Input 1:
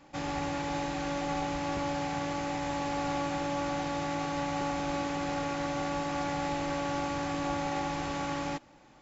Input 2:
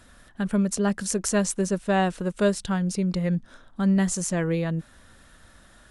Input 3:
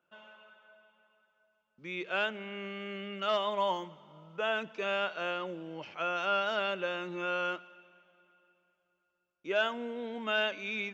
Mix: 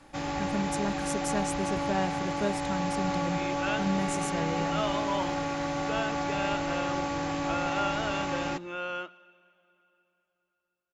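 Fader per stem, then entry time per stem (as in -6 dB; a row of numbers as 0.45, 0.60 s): +1.5, -9.0, -2.0 dB; 0.00, 0.00, 1.50 s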